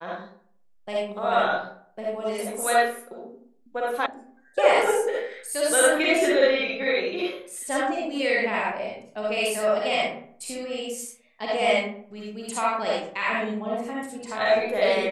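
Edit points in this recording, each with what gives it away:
4.06 sound cut off

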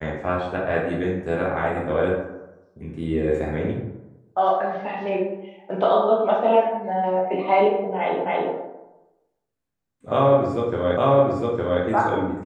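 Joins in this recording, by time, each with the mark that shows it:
8.26 repeat of the last 0.28 s
10.97 repeat of the last 0.86 s

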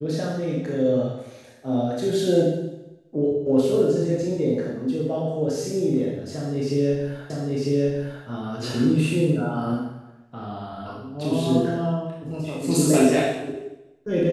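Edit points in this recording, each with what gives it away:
7.3 repeat of the last 0.95 s

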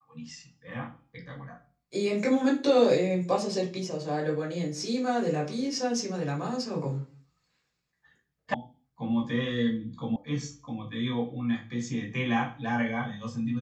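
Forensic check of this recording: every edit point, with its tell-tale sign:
8.54 sound cut off
10.16 sound cut off

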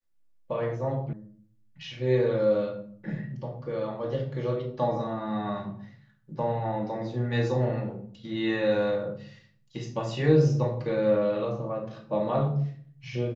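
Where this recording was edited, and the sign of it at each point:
1.13 sound cut off

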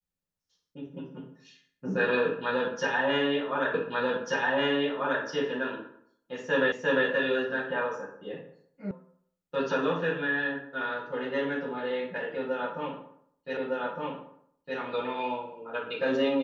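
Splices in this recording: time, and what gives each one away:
3.74 repeat of the last 1.49 s
6.72 repeat of the last 0.35 s
8.91 sound cut off
13.57 repeat of the last 1.21 s

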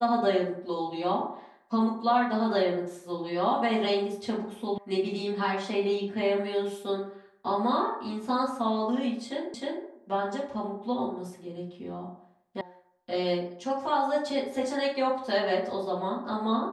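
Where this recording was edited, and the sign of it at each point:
4.78 sound cut off
9.54 repeat of the last 0.31 s
12.61 sound cut off

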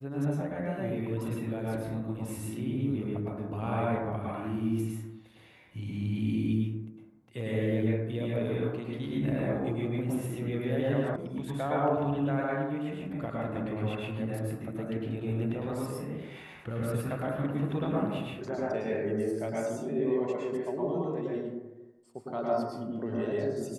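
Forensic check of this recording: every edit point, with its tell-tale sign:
11.16 sound cut off

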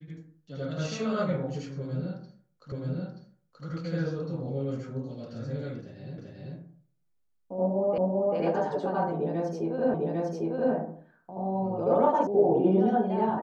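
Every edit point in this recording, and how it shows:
2.72 repeat of the last 0.93 s
6.18 repeat of the last 0.39 s
7.98 repeat of the last 0.39 s
9.94 repeat of the last 0.8 s
12.27 sound cut off

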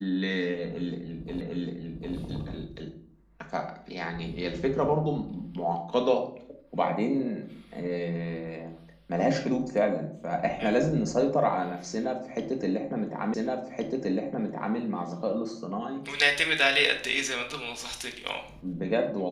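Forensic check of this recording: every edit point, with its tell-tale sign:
1.41 repeat of the last 0.75 s
13.34 repeat of the last 1.42 s

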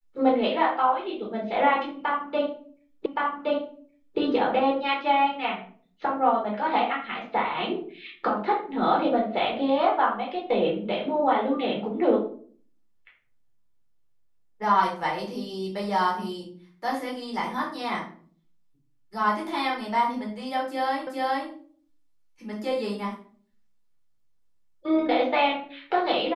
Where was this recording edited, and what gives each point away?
3.06 repeat of the last 1.12 s
21.07 repeat of the last 0.42 s

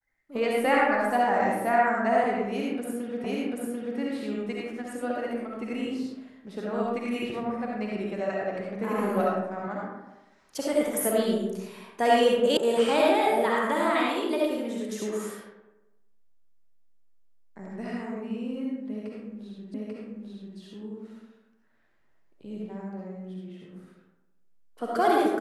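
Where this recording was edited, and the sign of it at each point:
3.24 repeat of the last 0.74 s
12.57 sound cut off
19.74 repeat of the last 0.84 s

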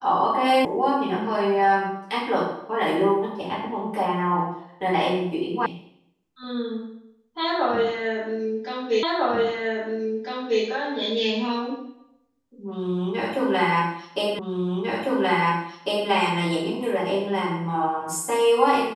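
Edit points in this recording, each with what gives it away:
0.65 sound cut off
5.66 sound cut off
9.03 repeat of the last 1.6 s
14.39 repeat of the last 1.7 s

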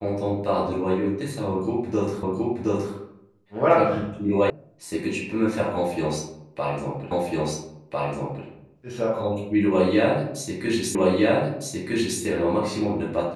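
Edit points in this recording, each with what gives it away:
2.23 repeat of the last 0.72 s
4.5 sound cut off
7.11 repeat of the last 1.35 s
10.95 repeat of the last 1.26 s

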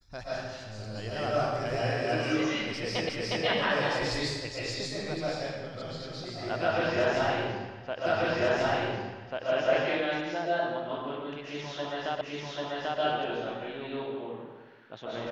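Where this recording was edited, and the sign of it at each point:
3.09 repeat of the last 0.36 s
8.06 repeat of the last 1.44 s
12.21 repeat of the last 0.79 s

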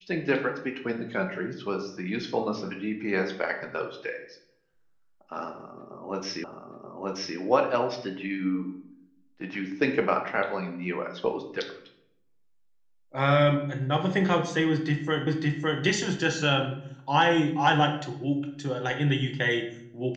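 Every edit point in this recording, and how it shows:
6.44 repeat of the last 0.93 s
15.27 repeat of the last 0.56 s

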